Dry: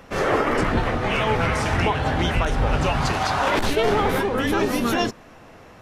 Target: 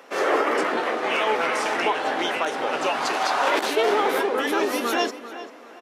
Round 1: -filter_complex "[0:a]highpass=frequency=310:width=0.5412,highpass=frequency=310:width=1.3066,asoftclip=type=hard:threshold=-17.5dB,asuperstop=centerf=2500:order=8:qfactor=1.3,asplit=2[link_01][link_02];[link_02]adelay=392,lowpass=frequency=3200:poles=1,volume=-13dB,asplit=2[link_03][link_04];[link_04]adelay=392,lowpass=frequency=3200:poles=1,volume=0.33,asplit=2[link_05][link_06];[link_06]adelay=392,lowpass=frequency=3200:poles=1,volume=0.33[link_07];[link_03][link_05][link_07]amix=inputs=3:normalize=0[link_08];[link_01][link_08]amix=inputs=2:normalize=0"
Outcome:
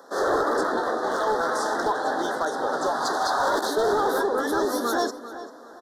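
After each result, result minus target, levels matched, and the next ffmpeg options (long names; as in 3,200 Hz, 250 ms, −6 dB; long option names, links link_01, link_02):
hard clipping: distortion +25 dB; 2,000 Hz band −3.0 dB
-filter_complex "[0:a]highpass=frequency=310:width=0.5412,highpass=frequency=310:width=1.3066,asoftclip=type=hard:threshold=-11dB,asuperstop=centerf=2500:order=8:qfactor=1.3,asplit=2[link_01][link_02];[link_02]adelay=392,lowpass=frequency=3200:poles=1,volume=-13dB,asplit=2[link_03][link_04];[link_04]adelay=392,lowpass=frequency=3200:poles=1,volume=0.33,asplit=2[link_05][link_06];[link_06]adelay=392,lowpass=frequency=3200:poles=1,volume=0.33[link_07];[link_03][link_05][link_07]amix=inputs=3:normalize=0[link_08];[link_01][link_08]amix=inputs=2:normalize=0"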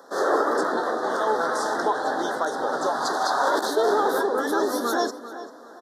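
2,000 Hz band −3.0 dB
-filter_complex "[0:a]highpass=frequency=310:width=0.5412,highpass=frequency=310:width=1.3066,asoftclip=type=hard:threshold=-11dB,asplit=2[link_01][link_02];[link_02]adelay=392,lowpass=frequency=3200:poles=1,volume=-13dB,asplit=2[link_03][link_04];[link_04]adelay=392,lowpass=frequency=3200:poles=1,volume=0.33,asplit=2[link_05][link_06];[link_06]adelay=392,lowpass=frequency=3200:poles=1,volume=0.33[link_07];[link_03][link_05][link_07]amix=inputs=3:normalize=0[link_08];[link_01][link_08]amix=inputs=2:normalize=0"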